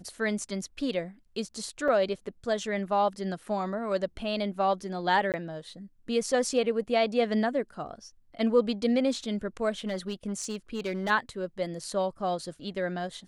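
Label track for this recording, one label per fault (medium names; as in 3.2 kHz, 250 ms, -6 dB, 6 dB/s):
1.880000	1.880000	dropout 4.4 ms
5.320000	5.340000	dropout 18 ms
9.860000	11.110000	clipped -26.5 dBFS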